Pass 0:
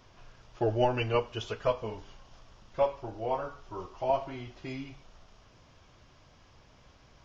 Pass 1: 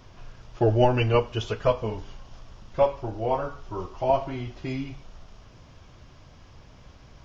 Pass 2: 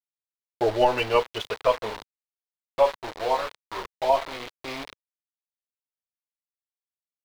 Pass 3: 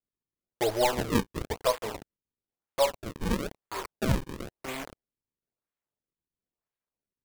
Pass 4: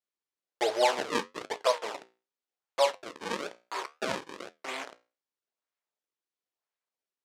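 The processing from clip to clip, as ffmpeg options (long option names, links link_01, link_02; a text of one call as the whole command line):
ffmpeg -i in.wav -af "lowshelf=frequency=280:gain=6.5,volume=4.5dB" out.wav
ffmpeg -i in.wav -af "aeval=exprs='val(0)*gte(abs(val(0)),0.0299)':channel_layout=same,equalizer=frequency=125:width_type=o:width=1:gain=-8,equalizer=frequency=500:width_type=o:width=1:gain=7,equalizer=frequency=1000:width_type=o:width=1:gain=9,equalizer=frequency=2000:width_type=o:width=1:gain=7,equalizer=frequency=4000:width_type=o:width=1:gain=12,volume=-8dB" out.wav
ffmpeg -i in.wav -filter_complex "[0:a]asplit=2[link_01][link_02];[link_02]acompressor=threshold=-28dB:ratio=6,volume=-2dB[link_03];[link_01][link_03]amix=inputs=2:normalize=0,acrusher=samples=37:mix=1:aa=0.000001:lfo=1:lforange=59.2:lforate=1,volume=-6.5dB" out.wav
ffmpeg -i in.wav -af "flanger=delay=10:depth=7:regen=-70:speed=0.7:shape=sinusoidal,highpass=480,lowpass=6900,volume=6dB" out.wav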